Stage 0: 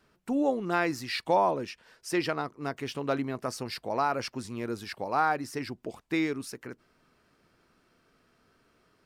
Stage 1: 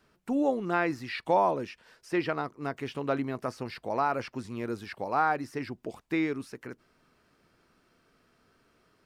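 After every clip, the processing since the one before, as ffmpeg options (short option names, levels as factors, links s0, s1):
-filter_complex "[0:a]acrossover=split=3200[s0][s1];[s1]acompressor=threshold=0.00251:ratio=4:attack=1:release=60[s2];[s0][s2]amix=inputs=2:normalize=0"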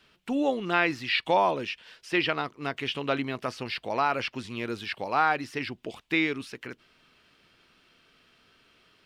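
-af "equalizer=f=3100:w=1.1:g=15"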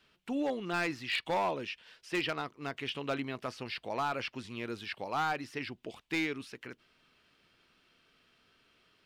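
-af "asoftclip=type=hard:threshold=0.1,volume=0.501"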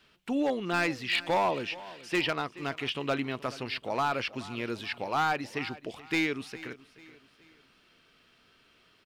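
-af "aecho=1:1:427|854|1281:0.119|0.0475|0.019,volume=1.68"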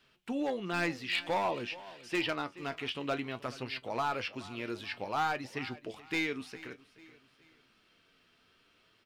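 -af "flanger=delay=7.3:depth=4.6:regen=62:speed=0.54:shape=triangular"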